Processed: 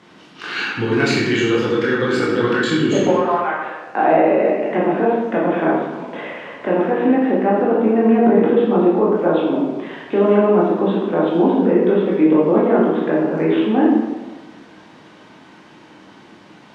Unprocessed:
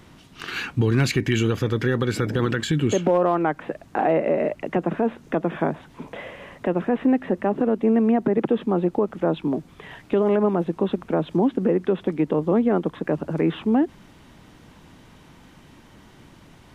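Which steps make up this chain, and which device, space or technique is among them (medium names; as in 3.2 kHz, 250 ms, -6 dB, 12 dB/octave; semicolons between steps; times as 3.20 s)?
3.10–3.85 s: high-pass 1 kHz 12 dB/octave; supermarket ceiling speaker (band-pass 230–5800 Hz; reverberation RT60 1.2 s, pre-delay 16 ms, DRR -5.5 dB); trim +1 dB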